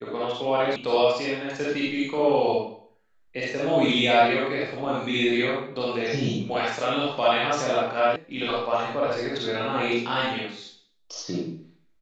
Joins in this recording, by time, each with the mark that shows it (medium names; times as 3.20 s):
0.76 s: sound stops dead
8.16 s: sound stops dead